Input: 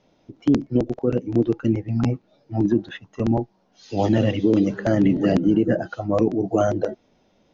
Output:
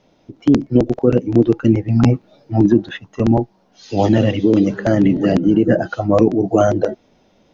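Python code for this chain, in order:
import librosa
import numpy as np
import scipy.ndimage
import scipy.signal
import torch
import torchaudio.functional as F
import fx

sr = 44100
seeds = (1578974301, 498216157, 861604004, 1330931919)

y = fx.rider(x, sr, range_db=4, speed_s=0.5)
y = F.gain(torch.from_numpy(y), 6.5).numpy()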